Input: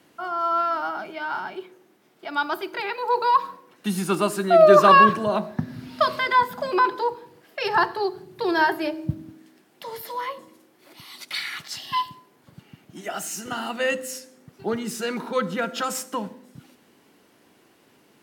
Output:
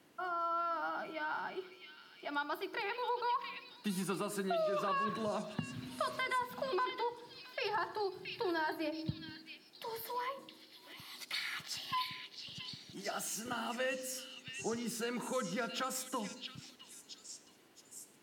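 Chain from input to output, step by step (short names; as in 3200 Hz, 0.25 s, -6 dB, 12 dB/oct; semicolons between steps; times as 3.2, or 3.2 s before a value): limiter -12.5 dBFS, peak gain reduction 10.5 dB; compressor 2.5:1, threshold -28 dBFS, peak gain reduction 8.5 dB; delay with a stepping band-pass 0.671 s, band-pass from 3300 Hz, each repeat 0.7 oct, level -2 dB; gain -7.5 dB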